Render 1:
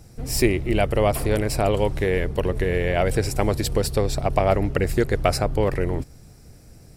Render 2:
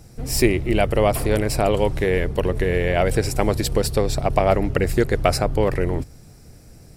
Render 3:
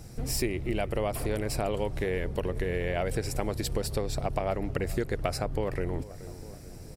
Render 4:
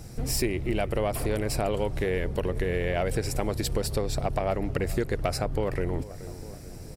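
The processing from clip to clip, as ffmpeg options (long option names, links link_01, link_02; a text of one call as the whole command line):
ffmpeg -i in.wav -af "bandreject=frequency=50:width_type=h:width=6,bandreject=frequency=100:width_type=h:width=6,volume=2dB" out.wav
ffmpeg -i in.wav -filter_complex "[0:a]asplit=2[link_01][link_02];[link_02]adelay=427,lowpass=frequency=1400:poles=1,volume=-23dB,asplit=2[link_03][link_04];[link_04]adelay=427,lowpass=frequency=1400:poles=1,volume=0.5,asplit=2[link_05][link_06];[link_06]adelay=427,lowpass=frequency=1400:poles=1,volume=0.5[link_07];[link_01][link_03][link_05][link_07]amix=inputs=4:normalize=0,acompressor=threshold=-30dB:ratio=3" out.wav
ffmpeg -i in.wav -af "asoftclip=type=tanh:threshold=-16.5dB,volume=3dB" out.wav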